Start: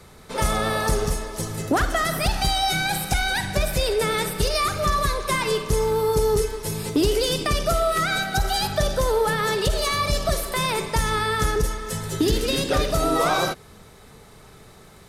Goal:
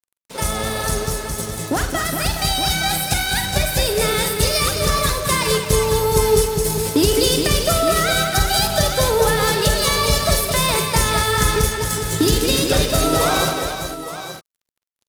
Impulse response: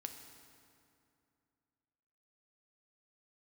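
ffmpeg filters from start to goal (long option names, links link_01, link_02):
-filter_complex "[0:a]highpass=63,lowshelf=frequency=150:gain=6.5,bandreject=frequency=104.9:width_type=h:width=4,bandreject=frequency=209.8:width_type=h:width=4,aeval=exprs='sgn(val(0))*max(abs(val(0))-0.0158,0)':channel_layout=same,asplit=2[link_01][link_02];[link_02]aecho=0:1:44|46|215|415|869:0.141|0.211|0.422|0.398|0.316[link_03];[link_01][link_03]amix=inputs=2:normalize=0,dynaudnorm=framelen=780:gausssize=9:maxgain=7dB,highshelf=frequency=4100:gain=8,bandreject=frequency=1200:width=19,volume=-1dB"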